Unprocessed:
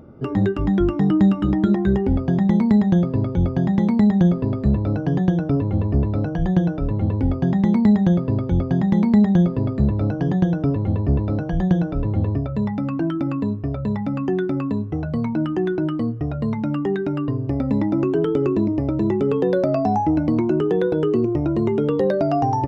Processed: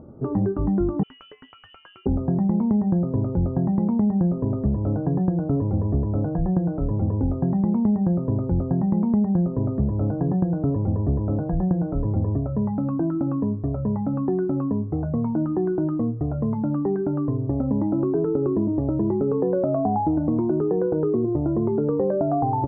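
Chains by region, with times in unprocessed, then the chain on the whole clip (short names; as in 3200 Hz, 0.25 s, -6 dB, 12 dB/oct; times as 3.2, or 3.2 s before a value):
1.03–2.06 HPF 180 Hz + inverted band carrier 3200 Hz + core saturation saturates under 2800 Hz
whole clip: LPF 1100 Hz 24 dB/oct; compressor 3:1, threshold -19 dBFS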